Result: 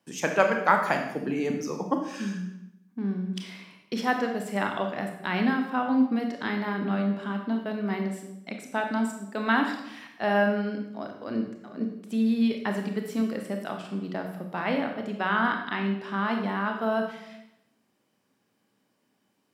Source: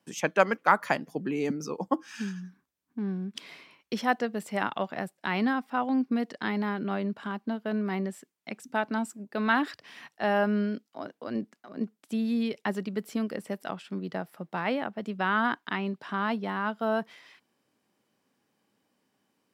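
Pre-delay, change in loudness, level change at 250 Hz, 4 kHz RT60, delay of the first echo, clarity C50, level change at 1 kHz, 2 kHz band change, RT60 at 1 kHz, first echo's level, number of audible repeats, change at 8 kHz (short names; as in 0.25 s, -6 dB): 24 ms, +2.0 dB, +3.0 dB, 0.70 s, none, 5.5 dB, +1.5 dB, +2.0 dB, 0.80 s, none, none, +1.5 dB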